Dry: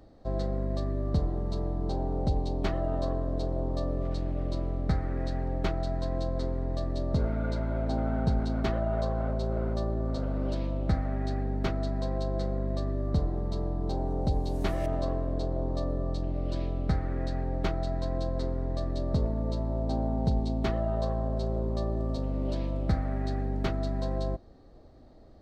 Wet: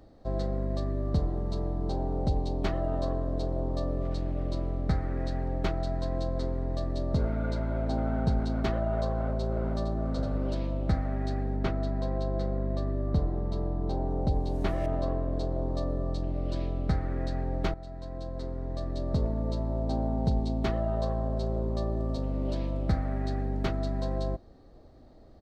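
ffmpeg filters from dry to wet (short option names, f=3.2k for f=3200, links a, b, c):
-filter_complex "[0:a]asplit=2[a][b];[b]afade=t=in:st=9.18:d=0.01,afade=t=out:st=9.9:d=0.01,aecho=0:1:460|920:0.446684|0.0446684[c];[a][c]amix=inputs=2:normalize=0,asettb=1/sr,asplit=3[d][e][f];[d]atrim=end=11.564[g];[e]atrim=start=11.56:end=15.33,asetpts=PTS-STARTPTS,afade=t=in:d=0.004:c=qsin,afade=t=out:st=3.766:d=0.004:c=qsin,aemphasis=mode=reproduction:type=cd[h];[f]atrim=start=15.326[i];[g][h]acrossfade=d=0.004:c1=hsin:c2=qsin[j];[j][i]acrossfade=d=0.004:c1=qsin:c2=hsin,asplit=2[k][l];[k]atrim=end=17.74,asetpts=PTS-STARTPTS,afade=t=out:st=17.736:d=0.004:c=hsin:silence=0.211349[m];[l]atrim=start=17.74,asetpts=PTS-STARTPTS,afade=t=in:d=1.54:silence=0.211349[n];[m][n]concat=n=2:v=0:a=1"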